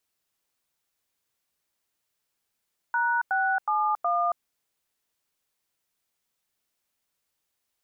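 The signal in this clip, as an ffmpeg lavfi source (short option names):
-f lavfi -i "aevalsrc='0.0596*clip(min(mod(t,0.368),0.275-mod(t,0.368))/0.002,0,1)*(eq(floor(t/0.368),0)*(sin(2*PI*941*mod(t,0.368))+sin(2*PI*1477*mod(t,0.368)))+eq(floor(t/0.368),1)*(sin(2*PI*770*mod(t,0.368))+sin(2*PI*1477*mod(t,0.368)))+eq(floor(t/0.368),2)*(sin(2*PI*852*mod(t,0.368))+sin(2*PI*1209*mod(t,0.368)))+eq(floor(t/0.368),3)*(sin(2*PI*697*mod(t,0.368))+sin(2*PI*1209*mod(t,0.368))))':d=1.472:s=44100"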